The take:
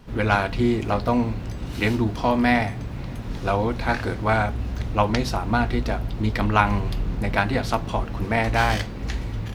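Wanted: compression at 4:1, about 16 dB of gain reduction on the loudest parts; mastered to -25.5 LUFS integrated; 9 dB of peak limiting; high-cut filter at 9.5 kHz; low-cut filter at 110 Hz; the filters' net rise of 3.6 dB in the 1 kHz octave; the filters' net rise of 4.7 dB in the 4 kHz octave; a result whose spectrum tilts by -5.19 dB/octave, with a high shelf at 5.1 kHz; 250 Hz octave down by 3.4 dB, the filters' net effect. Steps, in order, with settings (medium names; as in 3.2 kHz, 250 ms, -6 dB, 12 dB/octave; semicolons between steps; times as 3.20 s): high-pass 110 Hz; low-pass 9.5 kHz; peaking EQ 250 Hz -4 dB; peaking EQ 1 kHz +4.5 dB; peaking EQ 4 kHz +3 dB; treble shelf 5.1 kHz +6.5 dB; compression 4:1, threshold -29 dBFS; trim +9 dB; peak limiter -12.5 dBFS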